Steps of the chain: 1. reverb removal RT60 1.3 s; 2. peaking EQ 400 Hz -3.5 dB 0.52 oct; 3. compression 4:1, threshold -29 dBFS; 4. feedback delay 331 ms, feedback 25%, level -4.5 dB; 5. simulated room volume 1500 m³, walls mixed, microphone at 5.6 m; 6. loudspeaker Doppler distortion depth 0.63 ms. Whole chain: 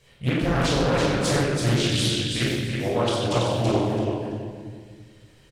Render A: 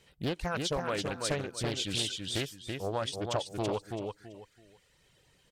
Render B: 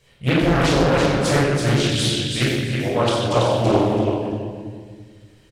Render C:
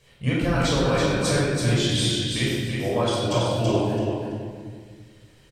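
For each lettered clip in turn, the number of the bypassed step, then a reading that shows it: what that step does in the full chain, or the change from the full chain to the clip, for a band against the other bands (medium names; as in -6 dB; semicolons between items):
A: 5, momentary loudness spread change -3 LU; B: 3, mean gain reduction 3.0 dB; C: 6, momentary loudness spread change -2 LU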